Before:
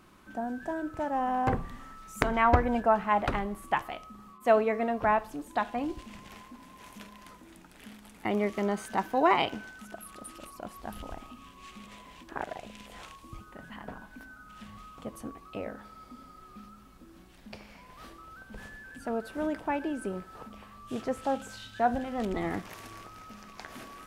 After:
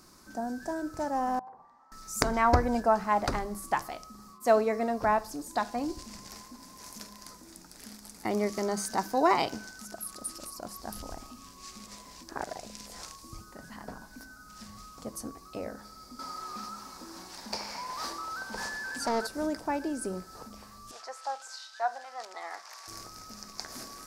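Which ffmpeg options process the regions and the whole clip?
ffmpeg -i in.wav -filter_complex "[0:a]asettb=1/sr,asplit=3[link_01][link_02][link_03];[link_01]atrim=end=1.394[link_04];[link_02]atrim=start=1.39:end=1.92,asetpts=PTS-STARTPTS,afade=type=in:duration=0.004:curve=qsin,afade=type=out:start_time=0.526:duration=0.004:curve=qsin,bandpass=frequency=870:width_type=q:width=5,acompressor=threshold=-45dB:ratio=6:attack=3.2:release=140:knee=1:detection=peak[link_05];[link_03]atrim=start=1.916[link_06];[link_04][link_05]acrossfade=duration=0.004:curve1=hsin:curve2=qsin[link_07];[link_07][link_06]acrossfade=duration=0.004:curve1=qsin:curve2=hsin,asettb=1/sr,asplit=3[link_08][link_09][link_10];[link_08]atrim=end=16.194[link_11];[link_09]atrim=start=16.19:end=19.27,asetpts=PTS-STARTPTS,afade=type=in:duration=0.004:curve=qsin,afade=type=out:start_time=3.076:duration=0.004:curve=qsin,equalizer=frequency=920:width_type=o:width=0.34:gain=9,asplit=2[link_12][link_13];[link_13]highpass=frequency=720:poles=1,volume=19dB,asoftclip=type=tanh:threshold=-21dB[link_14];[link_12][link_14]amix=inputs=2:normalize=0,lowpass=frequency=3700:poles=1,volume=-6dB[link_15];[link_10]atrim=start=19.266[link_16];[link_11][link_15]acrossfade=duration=0.004:curve1=hsin:curve2=qsin[link_17];[link_17][link_16]acrossfade=duration=0.004:curve1=qsin:curve2=hsin,asettb=1/sr,asplit=3[link_18][link_19][link_20];[link_18]atrim=end=20.914[link_21];[link_19]atrim=start=20.91:end=22.88,asetpts=PTS-STARTPTS,afade=type=in:duration=0.004:curve=qsin,afade=type=out:start_time=1.966:duration=0.004:curve=qsin,highpass=frequency=770:width=0.5412,highpass=frequency=770:width=1.3066,aemphasis=mode=reproduction:type=bsi[link_22];[link_20]atrim=start=22.876[link_23];[link_21][link_22]acrossfade=duration=0.004:curve1=hsin:curve2=qsin[link_24];[link_24][link_23]acrossfade=duration=0.004:curve1=qsin:curve2=hsin,highshelf=frequency=3900:width_type=q:width=3:gain=8.5,bandreject=frequency=50:width_type=h:width=6,bandreject=frequency=100:width_type=h:width=6,bandreject=frequency=150:width_type=h:width=6,bandreject=frequency=200:width_type=h:width=6" out.wav

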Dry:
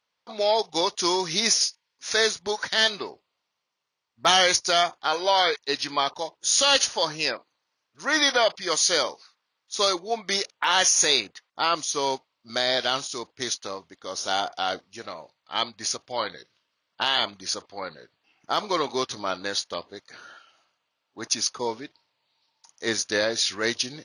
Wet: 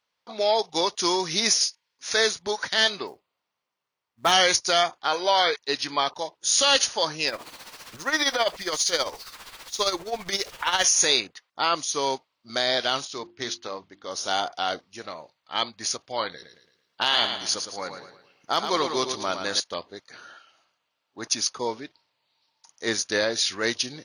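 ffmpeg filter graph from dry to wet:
ffmpeg -i in.wav -filter_complex "[0:a]asettb=1/sr,asplit=3[link_01][link_02][link_03];[link_01]atrim=end=3.074[link_04];[link_02]atrim=start=3.07:end=4.32,asetpts=PTS-STARTPTS,afade=type=in:duration=0.004:curve=qsin,afade=type=out:start_time=1.246:duration=0.004:curve=qsin,equalizer=frequency=5000:width=0.62:gain=-6,acrusher=bits=5:mode=log:mix=0:aa=0.000001[link_05];[link_03]atrim=start=4.316[link_06];[link_04][link_05]acrossfade=duration=0.004:curve1=hsin:curve2=qsin[link_07];[link_07][link_06]acrossfade=duration=0.004:curve1=qsin:curve2=hsin,asettb=1/sr,asplit=3[link_08][link_09][link_10];[link_08]atrim=end=7.284[link_11];[link_09]atrim=start=7.28:end=10.84,asetpts=PTS-STARTPTS,afade=type=in:duration=0.004:curve=qsin,afade=type=out:start_time=3.556:duration=0.004:curve=qsin,aeval=exprs='val(0)+0.5*0.0178*sgn(val(0))':channel_layout=same,asubboost=boost=3.5:cutoff=96,tremolo=f=15:d=0.66[link_12];[link_10]atrim=start=10.836[link_13];[link_11][link_12]acrossfade=duration=0.004:curve1=hsin:curve2=qsin[link_14];[link_14][link_13]acrossfade=duration=0.004:curve1=qsin:curve2=hsin,asettb=1/sr,asplit=3[link_15][link_16][link_17];[link_15]atrim=end=13.054[link_18];[link_16]atrim=start=13.05:end=14.11,asetpts=PTS-STARTPTS,afade=type=in:duration=0.004:curve=qsin,afade=type=out:start_time=1.056:duration=0.004:curve=qsin,lowpass=4800,bandreject=frequency=50:width_type=h:width=6,bandreject=frequency=100:width_type=h:width=6,bandreject=frequency=150:width_type=h:width=6,bandreject=frequency=200:width_type=h:width=6,bandreject=frequency=250:width_type=h:width=6,bandreject=frequency=300:width_type=h:width=6,bandreject=frequency=350:width_type=h:width=6[link_19];[link_17]atrim=start=14.106[link_20];[link_18][link_19]acrossfade=duration=0.004:curve1=hsin:curve2=qsin[link_21];[link_21][link_20]acrossfade=duration=0.004:curve1=qsin:curve2=hsin,asettb=1/sr,asplit=3[link_22][link_23][link_24];[link_22]atrim=end=16.314[link_25];[link_23]atrim=start=16.31:end=19.6,asetpts=PTS-STARTPTS,afade=type=in:duration=0.004:curve=qsin,afade=type=out:start_time=3.286:duration=0.004:curve=qsin,highshelf=frequency=5400:gain=5.5,aecho=1:1:111|222|333|444|555:0.422|0.173|0.0709|0.0291|0.0119,atrim=end_sample=145089[link_26];[link_24]atrim=start=19.596[link_27];[link_25][link_26]acrossfade=duration=0.004:curve1=hsin:curve2=qsin[link_28];[link_28][link_27]acrossfade=duration=0.004:curve1=qsin:curve2=hsin" out.wav

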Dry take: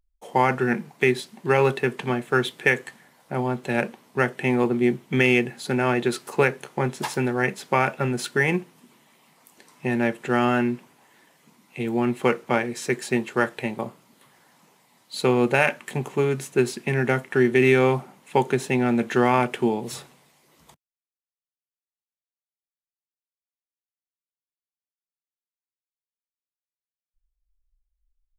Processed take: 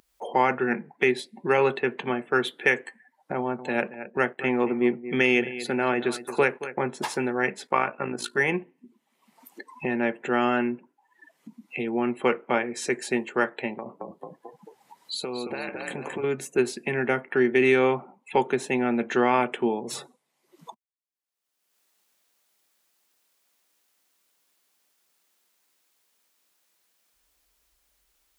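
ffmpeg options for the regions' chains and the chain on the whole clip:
ffmpeg -i in.wav -filter_complex "[0:a]asettb=1/sr,asplit=3[link_01][link_02][link_03];[link_01]atrim=end=3.364[link_04];[link_02]atrim=start=3.36:end=6.81,asetpts=PTS-STARTPTS,afade=type=in:duration=0.004:curve=qsin,afade=type=out:start_time=3.446:duration=0.004:curve=qsin,aeval=exprs='sgn(val(0))*max(abs(val(0))-0.00299,0)':channel_layout=same,aecho=1:1:225|450:0.188|0.0283,atrim=end_sample=152145[link_05];[link_03]atrim=start=6.806[link_06];[link_04][link_05]acrossfade=duration=0.004:curve1=hsin:curve2=qsin[link_07];[link_07][link_06]acrossfade=duration=0.004:curve1=qsin:curve2=hsin,asettb=1/sr,asplit=3[link_08][link_09][link_10];[link_08]atrim=end=7.674[link_11];[link_09]atrim=start=7.67:end=8.38,asetpts=PTS-STARTPTS,afade=type=in:duration=0.004:curve=qsin,afade=type=out:start_time=0.706:duration=0.004:curve=qsin,equalizer=frequency=1100:width_type=o:width=0.32:gain=6,bandreject=frequency=60:width_type=h:width=6,bandreject=frequency=120:width_type=h:width=6,bandreject=frequency=180:width_type=h:width=6,bandreject=frequency=240:width_type=h:width=6,bandreject=frequency=300:width_type=h:width=6,bandreject=frequency=360:width_type=h:width=6,bandreject=frequency=420:width_type=h:width=6,tremolo=f=54:d=0.71[link_12];[link_10]atrim=start=8.376[link_13];[link_11][link_12]acrossfade=duration=0.004:curve1=hsin:curve2=qsin[link_14];[link_14][link_13]acrossfade=duration=0.004:curve1=qsin:curve2=hsin,asettb=1/sr,asplit=3[link_15][link_16][link_17];[link_15]atrim=end=13.784[link_18];[link_16]atrim=start=13.78:end=16.24,asetpts=PTS-STARTPTS,afade=type=in:duration=0.004:curve=qsin,afade=type=out:start_time=2.456:duration=0.004:curve=qsin,acompressor=threshold=-31dB:ratio=5:attack=3.2:release=140:knee=1:detection=peak,asplit=7[link_19][link_20][link_21][link_22][link_23][link_24][link_25];[link_20]adelay=221,afreqshift=-31,volume=-5.5dB[link_26];[link_21]adelay=442,afreqshift=-62,volume=-11.5dB[link_27];[link_22]adelay=663,afreqshift=-93,volume=-17.5dB[link_28];[link_23]adelay=884,afreqshift=-124,volume=-23.6dB[link_29];[link_24]adelay=1105,afreqshift=-155,volume=-29.6dB[link_30];[link_25]adelay=1326,afreqshift=-186,volume=-35.6dB[link_31];[link_19][link_26][link_27][link_28][link_29][link_30][link_31]amix=inputs=7:normalize=0,atrim=end_sample=108486[link_32];[link_17]atrim=start=16.236[link_33];[link_18][link_32]acrossfade=duration=0.004:curve1=hsin:curve2=qsin[link_34];[link_34][link_33]acrossfade=duration=0.004:curve1=qsin:curve2=hsin,highpass=220,afftdn=noise_reduction=33:noise_floor=-45,acompressor=mode=upward:threshold=-24dB:ratio=2.5,volume=-1.5dB" out.wav

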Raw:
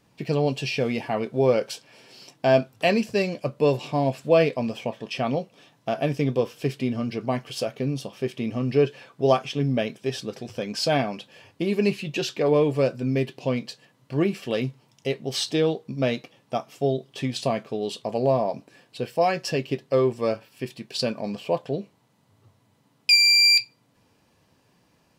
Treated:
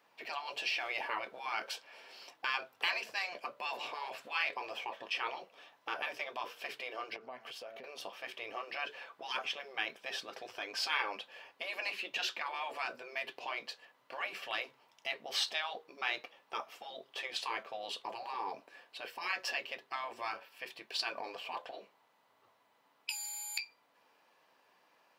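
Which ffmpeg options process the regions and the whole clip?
ffmpeg -i in.wav -filter_complex "[0:a]asettb=1/sr,asplit=3[link_01][link_02][link_03];[link_01]atrim=end=7.164[link_04];[link_02]atrim=start=7.16:end=7.84,asetpts=PTS-STARTPTS,afade=type=in:duration=0.004:curve=qsin,afade=type=out:start_time=0.676:duration=0.004:curve=qsin,bandreject=frequency=112.4:width_type=h:width=4,bandreject=frequency=224.8:width_type=h:width=4,bandreject=frequency=337.2:width_type=h:width=4,bandreject=frequency=449.6:width_type=h:width=4,bandreject=frequency=562:width_type=h:width=4,bandreject=frequency=674.4:width_type=h:width=4,bandreject=frequency=786.8:width_type=h:width=4,acompressor=threshold=-38dB:ratio=8:attack=3.2:release=140:knee=1:detection=peak[link_05];[link_03]atrim=start=7.836[link_06];[link_04][link_05]acrossfade=duration=0.004:curve1=hsin:curve2=qsin[link_07];[link_07][link_06]acrossfade=duration=0.004:curve1=qsin:curve2=hsin,equalizer=frequency=8300:width_type=o:width=2.1:gain=-14,afftfilt=real='re*lt(hypot(re,im),0.126)':imag='im*lt(hypot(re,im),0.126)':win_size=1024:overlap=0.75,highpass=770,volume=2.5dB" out.wav

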